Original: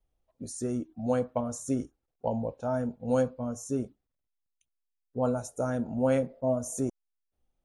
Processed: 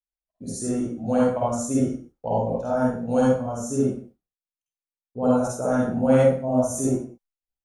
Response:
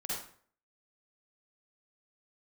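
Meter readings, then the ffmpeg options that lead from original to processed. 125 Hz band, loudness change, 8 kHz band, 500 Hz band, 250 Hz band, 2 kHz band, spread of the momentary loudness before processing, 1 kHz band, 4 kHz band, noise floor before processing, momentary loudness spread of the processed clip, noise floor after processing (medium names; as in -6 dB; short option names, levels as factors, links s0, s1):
+7.5 dB, +8.0 dB, +7.5 dB, +7.5 dB, +8.5 dB, +8.0 dB, 9 LU, +9.0 dB, no reading, -83 dBFS, 11 LU, under -85 dBFS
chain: -filter_complex "[0:a]agate=range=0.0224:threshold=0.00158:ratio=3:detection=peak[s0];[1:a]atrim=start_sample=2205,afade=t=out:st=0.33:d=0.01,atrim=end_sample=14994[s1];[s0][s1]afir=irnorm=-1:irlink=0,volume=1.88"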